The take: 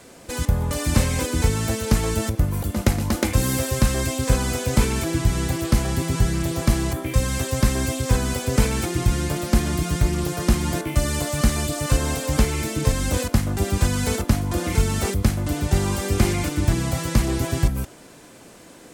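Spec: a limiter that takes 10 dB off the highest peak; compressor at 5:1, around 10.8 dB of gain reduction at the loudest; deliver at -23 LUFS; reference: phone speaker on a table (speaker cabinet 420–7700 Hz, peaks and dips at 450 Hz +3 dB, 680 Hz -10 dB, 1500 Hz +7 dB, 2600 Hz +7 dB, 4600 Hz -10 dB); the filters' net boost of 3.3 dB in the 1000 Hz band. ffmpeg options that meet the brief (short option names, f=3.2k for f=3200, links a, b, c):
-af "equalizer=f=1k:t=o:g=4.5,acompressor=threshold=-25dB:ratio=5,alimiter=limit=-19.5dB:level=0:latency=1,highpass=f=420:w=0.5412,highpass=f=420:w=1.3066,equalizer=f=450:t=q:w=4:g=3,equalizer=f=680:t=q:w=4:g=-10,equalizer=f=1.5k:t=q:w=4:g=7,equalizer=f=2.6k:t=q:w=4:g=7,equalizer=f=4.6k:t=q:w=4:g=-10,lowpass=f=7.7k:w=0.5412,lowpass=f=7.7k:w=1.3066,volume=11dB"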